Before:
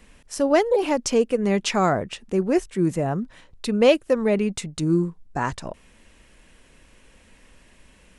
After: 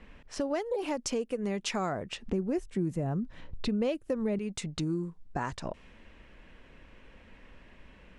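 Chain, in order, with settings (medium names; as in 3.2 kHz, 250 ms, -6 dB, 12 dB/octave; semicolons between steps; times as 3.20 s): level-controlled noise filter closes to 2.6 kHz, open at -19.5 dBFS; 2.26–4.39 s: bass shelf 340 Hz +11 dB; compression 4:1, threshold -31 dBFS, peak gain reduction 19 dB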